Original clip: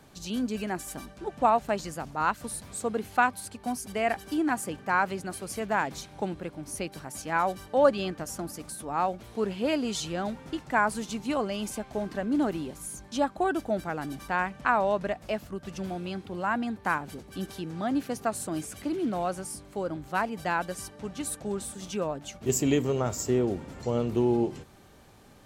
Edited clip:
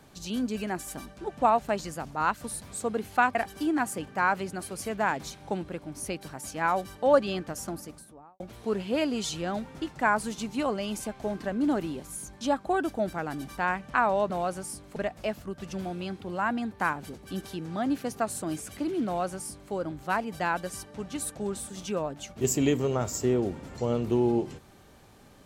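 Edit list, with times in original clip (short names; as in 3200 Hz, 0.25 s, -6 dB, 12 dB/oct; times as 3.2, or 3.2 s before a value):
3.35–4.06 cut
8.37–9.11 studio fade out
19.11–19.77 copy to 15.01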